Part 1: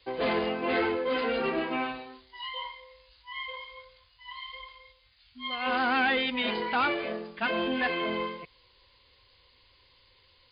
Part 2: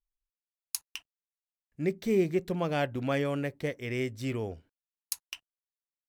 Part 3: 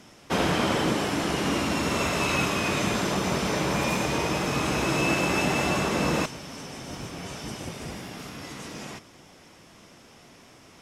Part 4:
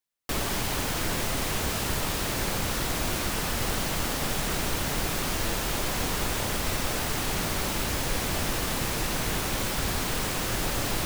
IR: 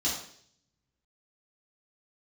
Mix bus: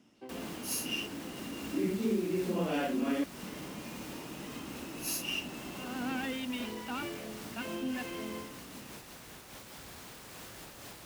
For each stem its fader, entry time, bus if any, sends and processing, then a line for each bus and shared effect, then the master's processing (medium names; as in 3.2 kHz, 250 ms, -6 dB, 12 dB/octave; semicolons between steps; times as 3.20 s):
-14.5 dB, 0.15 s, bus A, no send, auto duck -15 dB, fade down 0.45 s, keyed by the second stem
+2.5 dB, 0.00 s, muted 3.24–4.70 s, bus A, no send, phase randomisation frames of 200 ms; steep high-pass 170 Hz 96 dB/octave
-19.0 dB, 0.00 s, bus A, no send, peak limiter -21.5 dBFS, peak gain reduction 10 dB
-14.0 dB, 0.00 s, no bus, no send, bass shelf 100 Hz -7 dB; hard clipper -28.5 dBFS, distortion -11 dB; random flutter of the level, depth 55%
bus A: 0.0 dB, small resonant body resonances 250/2800 Hz, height 12 dB, ringing for 25 ms; compression, threshold -29 dBFS, peak gain reduction 16.5 dB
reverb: none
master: high-pass 46 Hz